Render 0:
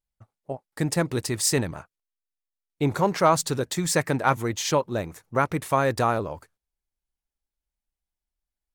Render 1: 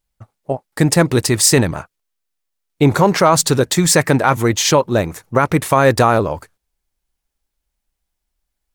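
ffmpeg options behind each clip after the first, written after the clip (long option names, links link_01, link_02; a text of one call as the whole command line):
ffmpeg -i in.wav -af "alimiter=level_in=13dB:limit=-1dB:release=50:level=0:latency=1,volume=-1dB" out.wav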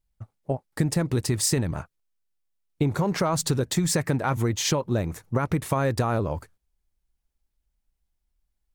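ffmpeg -i in.wav -af "lowshelf=frequency=240:gain=10,acompressor=threshold=-11dB:ratio=10,volume=-8.5dB" out.wav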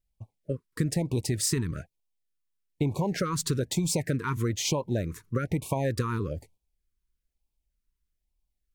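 ffmpeg -i in.wav -af "afftfilt=real='re*(1-between(b*sr/1024,630*pow(1600/630,0.5+0.5*sin(2*PI*1.1*pts/sr))/1.41,630*pow(1600/630,0.5+0.5*sin(2*PI*1.1*pts/sr))*1.41))':imag='im*(1-between(b*sr/1024,630*pow(1600/630,0.5+0.5*sin(2*PI*1.1*pts/sr))/1.41,630*pow(1600/630,0.5+0.5*sin(2*PI*1.1*pts/sr))*1.41))':win_size=1024:overlap=0.75,volume=-3.5dB" out.wav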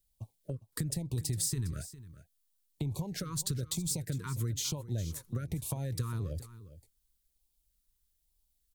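ffmpeg -i in.wav -filter_complex "[0:a]acrossover=split=130[link_01][link_02];[link_02]acompressor=threshold=-40dB:ratio=10[link_03];[link_01][link_03]amix=inputs=2:normalize=0,aecho=1:1:406:0.168,aexciter=amount=1.6:drive=8.8:freq=3300" out.wav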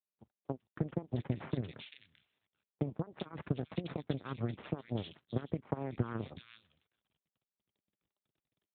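ffmpeg -i in.wav -filter_complex "[0:a]aeval=exprs='0.119*(cos(1*acos(clip(val(0)/0.119,-1,1)))-cos(1*PI/2))+0.0299*(cos(2*acos(clip(val(0)/0.119,-1,1)))-cos(2*PI/2))+0.00668*(cos(3*acos(clip(val(0)/0.119,-1,1)))-cos(3*PI/2))+0.00531*(cos(6*acos(clip(val(0)/0.119,-1,1)))-cos(6*PI/2))+0.015*(cos(7*acos(clip(val(0)/0.119,-1,1)))-cos(7*PI/2))':channel_layout=same,acrossover=split=2200[link_01][link_02];[link_02]adelay=390[link_03];[link_01][link_03]amix=inputs=2:normalize=0,volume=3dB" -ar 8000 -c:a libopencore_amrnb -b:a 12200 out.amr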